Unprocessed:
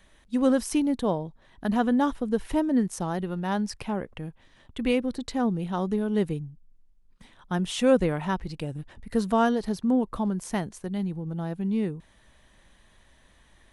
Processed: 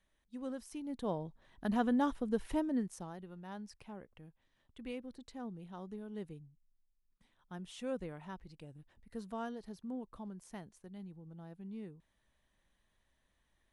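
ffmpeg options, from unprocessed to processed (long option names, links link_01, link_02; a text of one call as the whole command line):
ffmpeg -i in.wav -af "volume=-8dB,afade=type=in:start_time=0.81:duration=0.45:silence=0.251189,afade=type=out:start_time=2.46:duration=0.71:silence=0.281838" out.wav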